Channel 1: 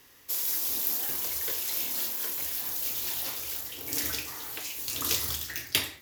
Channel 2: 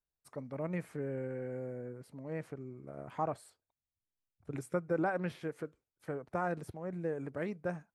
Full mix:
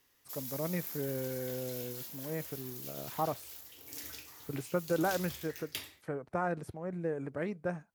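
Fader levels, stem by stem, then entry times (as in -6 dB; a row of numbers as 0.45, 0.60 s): -14.0, +1.5 dB; 0.00, 0.00 s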